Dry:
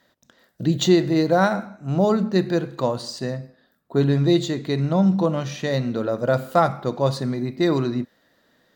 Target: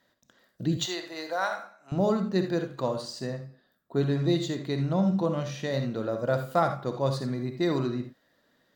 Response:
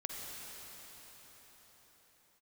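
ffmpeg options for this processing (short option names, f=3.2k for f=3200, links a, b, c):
-filter_complex "[0:a]asettb=1/sr,asplit=3[a][b][c];[a]atrim=end=0.774[d];[b]atrim=start=0.77:end=1.92,asetpts=PTS-STARTPTS,afade=t=in:d=0.004:c=qsin,afade=t=out:st=1.146:d=0.004:c=qsin,highpass=790[e];[c]atrim=start=1.916[f];[d][e]acrossfade=d=0.004:c1=hsin:c2=qsin[g];[g][f]acrossfade=d=0.004:c1=qsin:c2=hsin[h];[1:a]atrim=start_sample=2205,atrim=end_sample=3969[i];[h][i]afir=irnorm=-1:irlink=0,volume=-3.5dB"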